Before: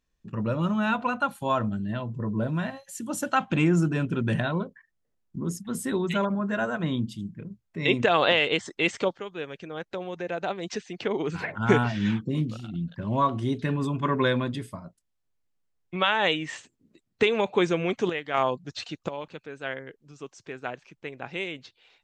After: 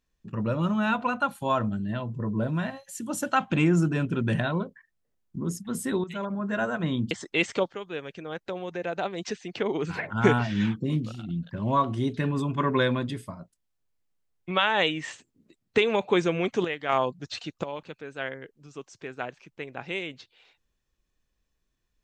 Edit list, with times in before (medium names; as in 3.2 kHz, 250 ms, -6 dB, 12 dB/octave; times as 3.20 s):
6.04–6.59 s: fade in, from -13.5 dB
7.11–8.56 s: delete